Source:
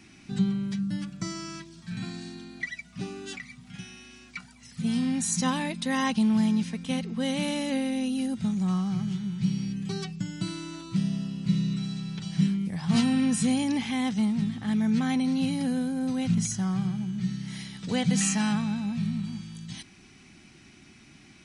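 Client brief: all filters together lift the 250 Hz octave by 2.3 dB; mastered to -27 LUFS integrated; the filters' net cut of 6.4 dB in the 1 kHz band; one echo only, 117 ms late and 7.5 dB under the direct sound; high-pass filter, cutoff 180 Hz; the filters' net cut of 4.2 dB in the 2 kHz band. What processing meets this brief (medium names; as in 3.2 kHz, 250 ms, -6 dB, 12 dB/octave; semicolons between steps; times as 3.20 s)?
high-pass 180 Hz; peaking EQ 250 Hz +5 dB; peaking EQ 1 kHz -8 dB; peaking EQ 2 kHz -3 dB; delay 117 ms -7.5 dB; trim -1.5 dB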